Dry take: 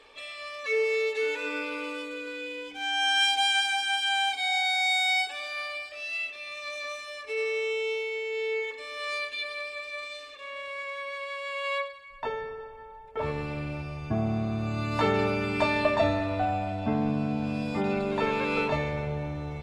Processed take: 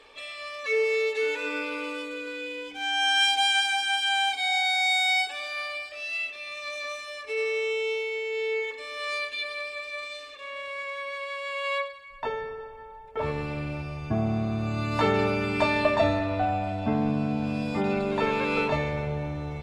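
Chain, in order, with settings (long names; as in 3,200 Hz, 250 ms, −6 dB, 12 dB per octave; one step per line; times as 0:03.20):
0:16.19–0:16.64: high-shelf EQ 10,000 Hz −10 dB
level +1.5 dB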